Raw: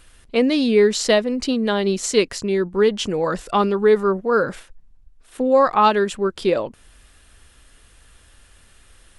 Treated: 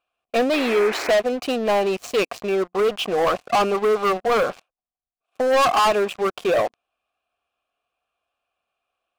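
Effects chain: vowel filter a; sample leveller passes 5; painted sound noise, 0.53–1.12, 280–2600 Hz -30 dBFS

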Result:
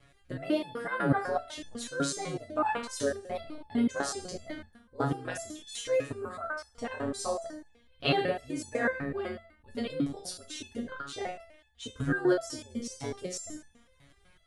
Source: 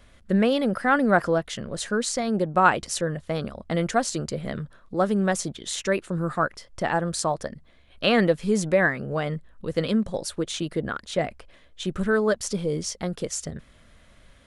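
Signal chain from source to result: Schroeder reverb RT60 0.62 s, combs from 26 ms, DRR 7.5 dB; ring modulator 66 Hz; stepped resonator 8 Hz 140–870 Hz; gain +8.5 dB

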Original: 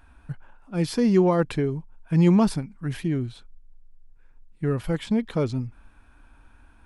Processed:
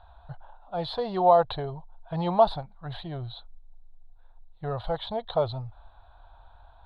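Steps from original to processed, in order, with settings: EQ curve 100 Hz 0 dB, 250 Hz -21 dB, 410 Hz -9 dB, 700 Hz +13 dB, 2400 Hz -15 dB, 3900 Hz +10 dB, 5600 Hz -29 dB

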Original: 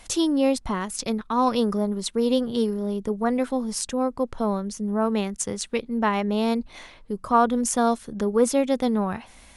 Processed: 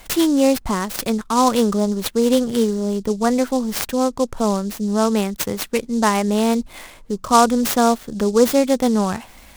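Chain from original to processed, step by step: noise-modulated delay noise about 5700 Hz, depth 0.039 ms; gain +5.5 dB

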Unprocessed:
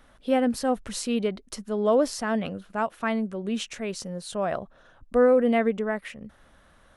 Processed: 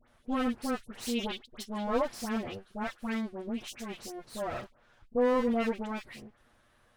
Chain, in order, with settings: minimum comb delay 8.4 ms; 1–1.78 bell 3400 Hz +11.5 dB 0.8 oct; dispersion highs, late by 80 ms, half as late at 1700 Hz; gain -6.5 dB

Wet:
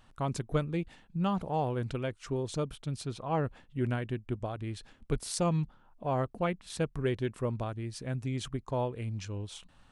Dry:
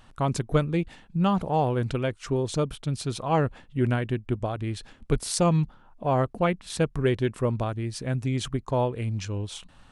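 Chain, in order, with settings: 3.03–3.43 high shelf 6300 Hz -> 3700 Hz -11 dB; gain -7 dB

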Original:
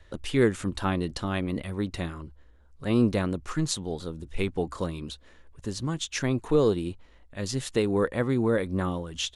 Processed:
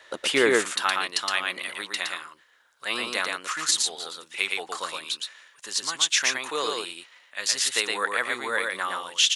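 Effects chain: HPF 650 Hz 12 dB/oct, from 0.62 s 1500 Hz; echo 0.116 s -3.5 dB; maximiser +19 dB; gain -7.5 dB

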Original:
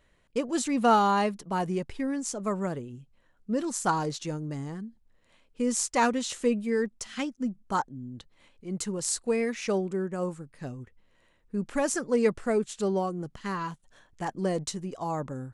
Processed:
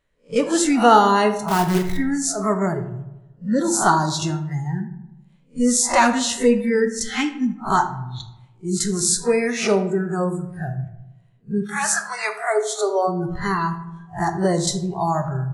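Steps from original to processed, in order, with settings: spectral swells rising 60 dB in 0.30 s; 11.61–13.07 HPF 950 Hz -> 360 Hz 24 dB/oct; spectral noise reduction 22 dB; in parallel at +2 dB: compressor 6:1, threshold -40 dBFS, peak gain reduction 21.5 dB; 1.48–1.97 on the sum: companded quantiser 4-bit; on a send: darkening echo 77 ms, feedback 65%, low-pass 2300 Hz, level -15.5 dB; on the sum: shoebox room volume 71 m³, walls mixed, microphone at 0.33 m; gain +6.5 dB

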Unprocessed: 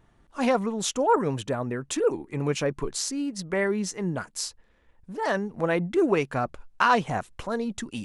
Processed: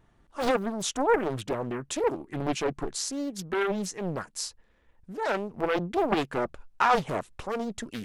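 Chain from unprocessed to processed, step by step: Doppler distortion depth 0.99 ms; gain -2 dB

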